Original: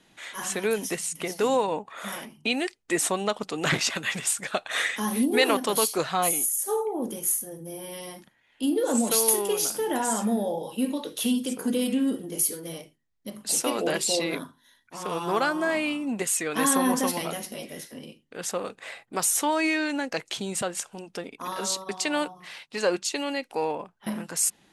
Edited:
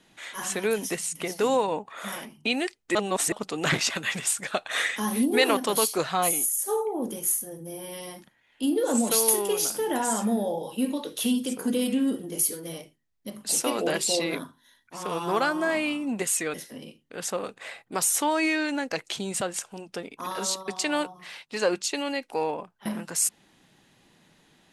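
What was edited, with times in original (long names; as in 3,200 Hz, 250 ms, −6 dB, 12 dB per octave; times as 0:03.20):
0:02.95–0:03.32: reverse
0:16.54–0:17.75: remove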